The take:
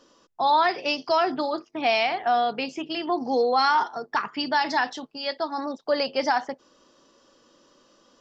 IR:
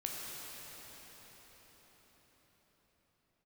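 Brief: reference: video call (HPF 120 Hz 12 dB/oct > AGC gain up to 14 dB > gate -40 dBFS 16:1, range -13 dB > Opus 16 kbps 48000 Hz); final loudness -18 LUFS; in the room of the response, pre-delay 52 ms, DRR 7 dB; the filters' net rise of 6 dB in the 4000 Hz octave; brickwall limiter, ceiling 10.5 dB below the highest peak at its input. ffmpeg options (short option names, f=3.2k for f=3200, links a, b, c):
-filter_complex "[0:a]equalizer=f=4k:t=o:g=7.5,alimiter=limit=-19.5dB:level=0:latency=1,asplit=2[a][b];[1:a]atrim=start_sample=2205,adelay=52[c];[b][c]afir=irnorm=-1:irlink=0,volume=-9dB[d];[a][d]amix=inputs=2:normalize=0,highpass=120,dynaudnorm=m=14dB,agate=range=-13dB:threshold=-40dB:ratio=16,volume=11dB" -ar 48000 -c:a libopus -b:a 16k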